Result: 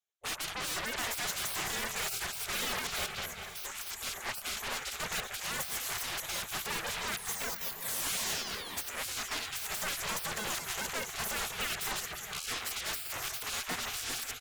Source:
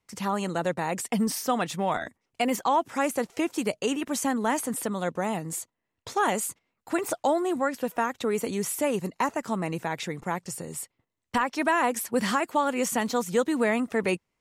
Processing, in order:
played backwards from end to start
parametric band 310 Hz +13.5 dB 0.22 octaves
noise gate with hold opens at −47 dBFS
EQ curve with evenly spaced ripples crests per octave 1.1, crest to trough 13 dB
on a send: repeating echo 196 ms, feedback 47%, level −15 dB
on the sum: soft clipping −21.5 dBFS, distortion −6 dB
sound drawn into the spectrogram fall, 0:07.17–0:08.81, 450–11,000 Hz −29 dBFS
in parallel at −10.5 dB: sine wavefolder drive 15 dB, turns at −21.5 dBFS
on the sum: delay that swaps between a low-pass and a high-pass 444 ms, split 2,100 Hz, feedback 70%, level −12 dB
gate on every frequency bin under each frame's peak −20 dB weak

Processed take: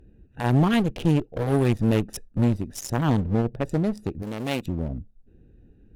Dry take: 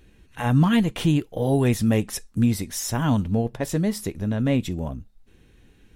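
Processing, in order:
adaptive Wiener filter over 41 samples
asymmetric clip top −32 dBFS, bottom −12.5 dBFS
0:04.22–0:04.66: RIAA equalisation recording
level +2.5 dB

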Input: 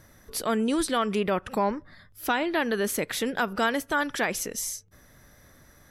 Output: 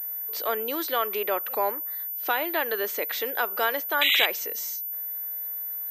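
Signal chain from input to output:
high-pass filter 390 Hz 24 dB per octave
sound drawn into the spectrogram noise, 0:04.01–0:04.26, 1,900–4,000 Hz −21 dBFS
switching amplifier with a slow clock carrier 14,000 Hz

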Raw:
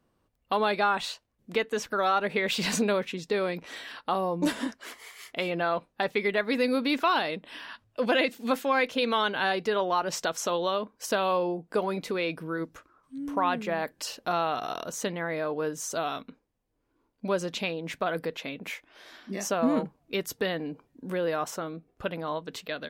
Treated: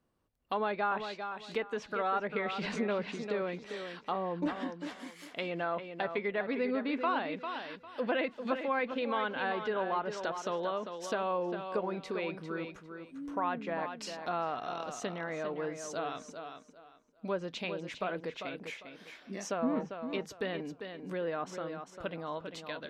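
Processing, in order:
tape delay 399 ms, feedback 26%, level −7 dB, low-pass 4,700 Hz
treble cut that deepens with the level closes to 2,300 Hz, closed at −23 dBFS
level −6.5 dB

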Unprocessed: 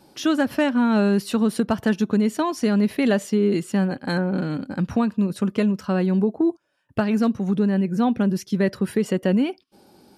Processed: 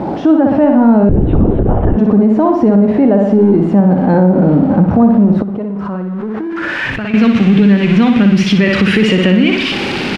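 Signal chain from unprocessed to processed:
converter with a step at zero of −27.5 dBFS
low-shelf EQ 110 Hz −7.5 dB
on a send: repeating echo 60 ms, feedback 50%, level −5.5 dB
0:01.09–0:01.97: on the sum: linear-prediction vocoder at 8 kHz whisper
downward compressor 3 to 1, threshold −22 dBFS, peak gain reduction 9 dB
parametric band 790 Hz −8.5 dB 2.1 octaves
0:05.42–0:07.14: output level in coarse steps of 19 dB
low-pass filter sweep 760 Hz → 2,600 Hz, 0:05.54–0:07.15
boost into a limiter +19 dB
level −1 dB

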